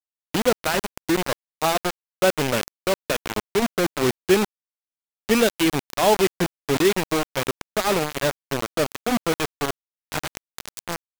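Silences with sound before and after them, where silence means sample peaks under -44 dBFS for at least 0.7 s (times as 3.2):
4.45–5.29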